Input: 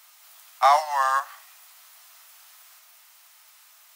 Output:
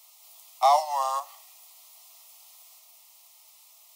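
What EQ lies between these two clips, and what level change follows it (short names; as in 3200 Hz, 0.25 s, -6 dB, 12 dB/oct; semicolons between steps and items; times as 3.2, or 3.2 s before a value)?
fixed phaser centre 640 Hz, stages 4; notch 1700 Hz, Q 8; 0.0 dB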